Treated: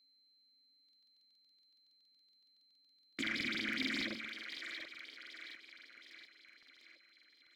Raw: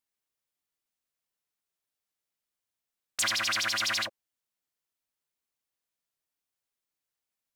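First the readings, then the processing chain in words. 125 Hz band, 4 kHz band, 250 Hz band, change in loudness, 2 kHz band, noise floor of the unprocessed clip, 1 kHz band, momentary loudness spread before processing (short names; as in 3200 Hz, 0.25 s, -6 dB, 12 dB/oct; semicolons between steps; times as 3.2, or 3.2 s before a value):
-4.5 dB, -10.5 dB, +8.0 dB, -12.0 dB, -6.0 dB, under -85 dBFS, -16.5 dB, 9 LU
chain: median filter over 15 samples; in parallel at +3 dB: negative-ratio compressor -38 dBFS, ratio -1; on the sum: vowel filter i; on a send: split-band echo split 400 Hz, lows 95 ms, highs 0.721 s, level -7 dB; on the sum: whine 4100 Hz -75 dBFS; crackling interface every 0.14 s, samples 2048, repeat, from 0.84; gain +7 dB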